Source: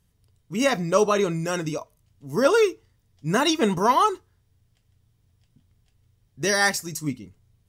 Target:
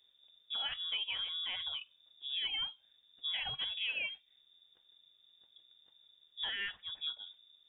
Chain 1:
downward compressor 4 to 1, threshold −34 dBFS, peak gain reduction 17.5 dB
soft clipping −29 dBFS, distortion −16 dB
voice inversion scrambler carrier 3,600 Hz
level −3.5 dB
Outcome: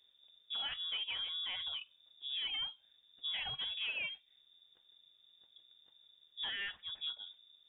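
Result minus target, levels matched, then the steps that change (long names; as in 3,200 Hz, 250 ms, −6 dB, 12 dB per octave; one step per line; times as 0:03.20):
soft clipping: distortion +16 dB
change: soft clipping −19 dBFS, distortion −32 dB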